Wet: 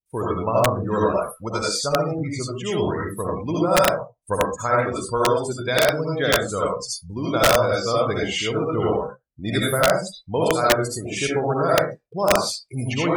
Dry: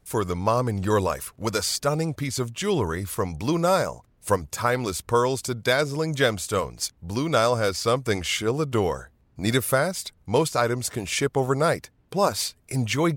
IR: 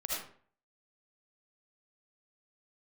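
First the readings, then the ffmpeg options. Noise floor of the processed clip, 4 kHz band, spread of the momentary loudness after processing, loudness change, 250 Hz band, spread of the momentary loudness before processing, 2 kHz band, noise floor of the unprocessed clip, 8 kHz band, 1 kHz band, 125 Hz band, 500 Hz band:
-60 dBFS, +3.0 dB, 9 LU, +3.0 dB, +1.5 dB, 7 LU, +3.5 dB, -62 dBFS, +0.5 dB, +3.5 dB, 0.0 dB, +3.5 dB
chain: -filter_complex "[1:a]atrim=start_sample=2205,afade=t=out:st=0.27:d=0.01,atrim=end_sample=12348[a];[0:a][a]afir=irnorm=-1:irlink=0,afftdn=nr=33:nf=-30,aeval=exprs='(mod(2.51*val(0)+1,2)-1)/2.51':c=same"

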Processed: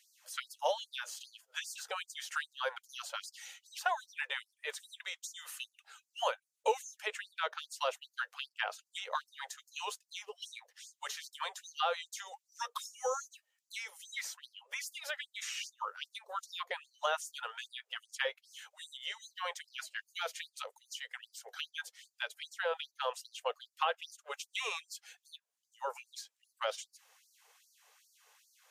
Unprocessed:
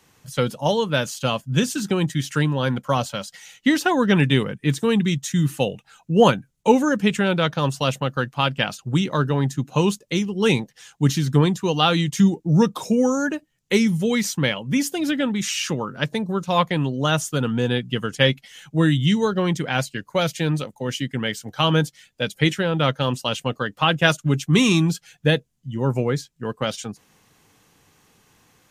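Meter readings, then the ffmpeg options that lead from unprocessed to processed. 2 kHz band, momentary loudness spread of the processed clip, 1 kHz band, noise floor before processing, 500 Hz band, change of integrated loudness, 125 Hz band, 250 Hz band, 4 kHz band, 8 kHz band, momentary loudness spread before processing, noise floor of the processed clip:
-14.0 dB, 12 LU, -13.0 dB, -64 dBFS, -19.0 dB, -18.5 dB, under -40 dB, under -40 dB, -15.0 dB, -13.0 dB, 9 LU, under -85 dBFS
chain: -filter_complex "[0:a]acrossover=split=490|1800[a][b][c];[a]acompressor=threshold=-28dB:ratio=4[d];[b]acompressor=threshold=-24dB:ratio=4[e];[c]acompressor=threshold=-37dB:ratio=4[f];[d][e][f]amix=inputs=3:normalize=0,afftfilt=real='re*gte(b*sr/1024,410*pow(4400/410,0.5+0.5*sin(2*PI*2.5*pts/sr)))':imag='im*gte(b*sr/1024,410*pow(4400/410,0.5+0.5*sin(2*PI*2.5*pts/sr)))':win_size=1024:overlap=0.75,volume=-5.5dB"

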